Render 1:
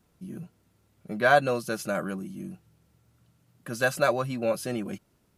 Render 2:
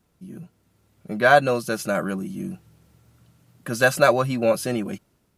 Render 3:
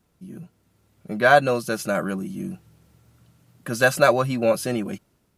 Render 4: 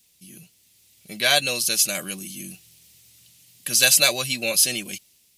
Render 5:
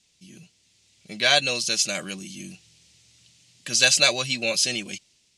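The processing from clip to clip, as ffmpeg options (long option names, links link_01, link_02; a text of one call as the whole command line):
ffmpeg -i in.wav -af "dynaudnorm=framelen=300:gausssize=5:maxgain=8dB" out.wav
ffmpeg -i in.wav -af anull out.wav
ffmpeg -i in.wav -af "aexciter=amount=13.2:drive=5:freq=2100,volume=-9.5dB" out.wav
ffmpeg -i in.wav -af "lowpass=frequency=7400:width=0.5412,lowpass=frequency=7400:width=1.3066" out.wav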